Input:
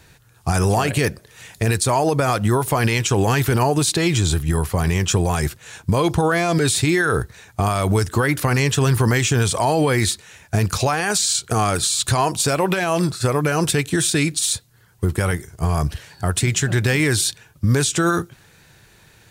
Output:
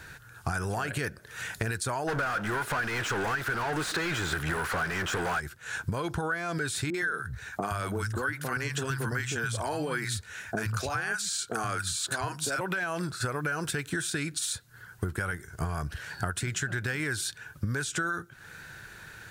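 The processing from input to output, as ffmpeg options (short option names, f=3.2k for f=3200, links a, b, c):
-filter_complex "[0:a]asplit=3[a][b][c];[a]afade=t=out:st=2.07:d=0.02[d];[b]asplit=2[e][f];[f]highpass=f=720:p=1,volume=33dB,asoftclip=type=tanh:threshold=-8dB[g];[e][g]amix=inputs=2:normalize=0,lowpass=f=2.6k:p=1,volume=-6dB,afade=t=in:st=2.07:d=0.02,afade=t=out:st=5.39:d=0.02[h];[c]afade=t=in:st=5.39:d=0.02[i];[d][h][i]amix=inputs=3:normalize=0,asettb=1/sr,asplit=3[j][k][l];[j]atrim=end=6.904[m];[k]atrim=start=6.9:end=12.61,asetpts=PTS-STARTPTS,afade=t=in:d=0.004:c=qsin,afade=t=out:st=5.706:d=0.004:c=qsin,acrossover=split=170|860[n][o][p];[p]adelay=40[q];[n]adelay=120[r];[r][o][q]amix=inputs=3:normalize=0,atrim=end_sample=251811[s];[l]atrim=start=12.606[t];[m][s]acrossfade=d=0.004:c1=hsin:c2=qsin[u];[u][t]acrossfade=d=0.004:c1=qsin:c2=hsin,asettb=1/sr,asplit=3[v][w][x];[v]atrim=end=13.374[y];[w]atrim=start=13.37:end=13.92,asetpts=PTS-STARTPTS,afade=t=in:d=0.004:c=qsin,afade=t=out:st=0.546:d=0.004:c=qsin,acrusher=bits=7:mix=0:aa=0.5[z];[x]atrim=start=13.916[aa];[y][z]acrossfade=d=0.004:c1=hsin:c2=qsin[ab];[ab][aa]acrossfade=d=0.004:c1=qsin:c2=hsin,equalizer=f=1.5k:t=o:w=0.46:g=14,acompressor=threshold=-29dB:ratio=8"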